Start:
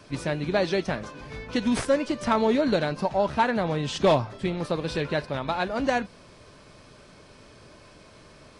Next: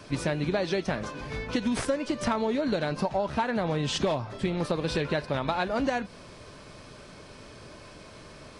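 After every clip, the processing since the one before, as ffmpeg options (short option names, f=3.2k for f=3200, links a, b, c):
-af "acompressor=threshold=-27dB:ratio=12,volume=3.5dB"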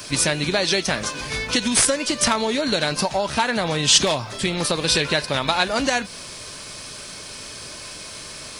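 -af "crystalizer=i=8:c=0,volume=3dB"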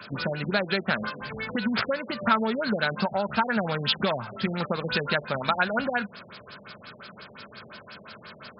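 -af "highpass=110,equalizer=f=210:t=q:w=4:g=8,equalizer=f=300:t=q:w=4:g=-8,equalizer=f=1.4k:t=q:w=4:g=10,lowpass=f=8.9k:w=0.5412,lowpass=f=8.9k:w=1.3066,afftfilt=real='re*lt(b*sr/1024,750*pow(5400/750,0.5+0.5*sin(2*PI*5.7*pts/sr)))':imag='im*lt(b*sr/1024,750*pow(5400/750,0.5+0.5*sin(2*PI*5.7*pts/sr)))':win_size=1024:overlap=0.75,volume=-5dB"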